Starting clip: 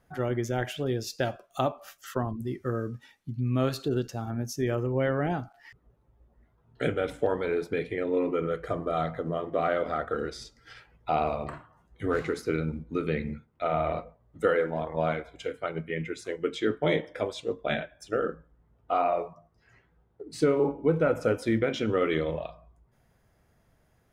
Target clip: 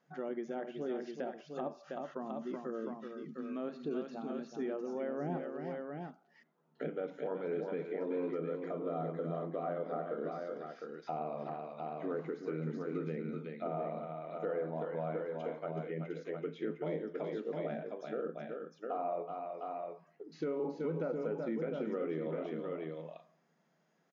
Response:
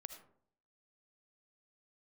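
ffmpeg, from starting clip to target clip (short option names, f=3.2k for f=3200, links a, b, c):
-filter_complex "[0:a]aecho=1:1:375|706:0.376|0.422,acrossover=split=2900[a][b];[b]acompressor=threshold=-55dB:ratio=4:attack=1:release=60[c];[a][c]amix=inputs=2:normalize=0,acrossover=split=940[d][e];[d]alimiter=limit=-21.5dB:level=0:latency=1:release=113[f];[e]acompressor=threshold=-47dB:ratio=6[g];[f][g]amix=inputs=2:normalize=0,afftfilt=real='re*between(b*sr/4096,140,7100)':imag='im*between(b*sr/4096,140,7100)':win_size=4096:overlap=0.75,volume=-6.5dB"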